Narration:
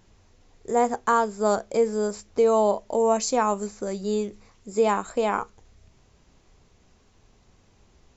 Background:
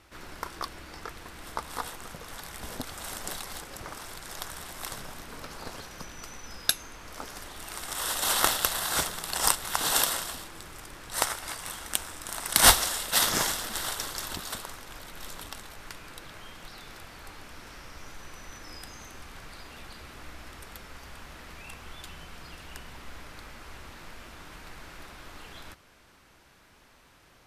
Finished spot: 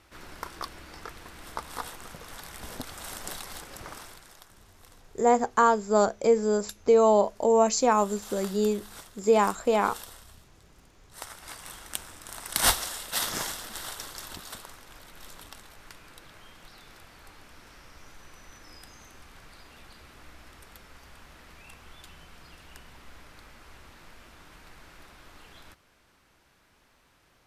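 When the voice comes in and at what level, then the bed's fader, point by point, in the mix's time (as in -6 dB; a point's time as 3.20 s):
4.50 s, +0.5 dB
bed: 3.98 s -1.5 dB
4.56 s -19 dB
11.08 s -19 dB
11.51 s -5.5 dB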